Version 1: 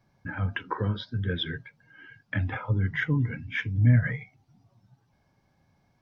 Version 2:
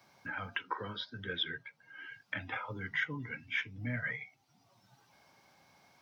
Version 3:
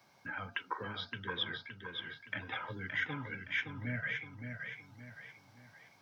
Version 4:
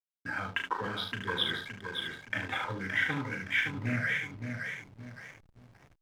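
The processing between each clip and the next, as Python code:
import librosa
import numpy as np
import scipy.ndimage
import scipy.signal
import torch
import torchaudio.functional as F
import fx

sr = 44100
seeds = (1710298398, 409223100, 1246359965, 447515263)

y1 = fx.highpass(x, sr, hz=1100.0, slope=6)
y1 = fx.notch(y1, sr, hz=1700.0, q=15.0)
y1 = fx.band_squash(y1, sr, depth_pct=40)
y2 = fx.echo_feedback(y1, sr, ms=568, feedback_pct=40, wet_db=-6)
y2 = y2 * 10.0 ** (-1.5 / 20.0)
y3 = fx.room_early_taps(y2, sr, ms=(36, 74), db=(-6.5, -6.5))
y3 = fx.backlash(y3, sr, play_db=-47.0)
y3 = fx.doppler_dist(y3, sr, depth_ms=0.2)
y3 = y3 * 10.0 ** (5.5 / 20.0)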